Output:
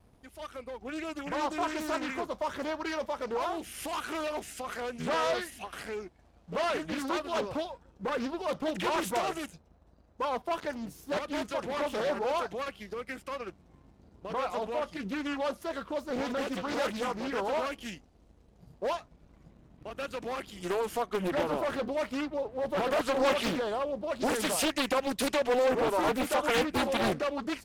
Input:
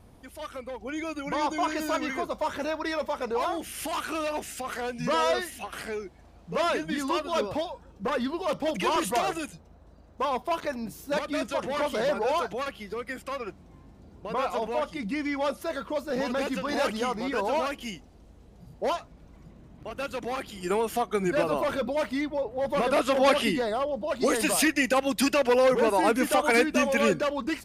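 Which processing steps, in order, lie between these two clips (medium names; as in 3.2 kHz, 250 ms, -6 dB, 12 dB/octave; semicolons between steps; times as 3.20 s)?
waveshaping leveller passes 1; vibrato 0.32 Hz 6.2 cents; loudspeaker Doppler distortion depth 0.82 ms; trim -7.5 dB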